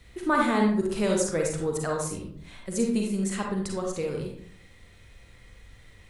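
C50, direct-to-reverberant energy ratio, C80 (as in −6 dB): 2.5 dB, −0.5 dB, 6.5 dB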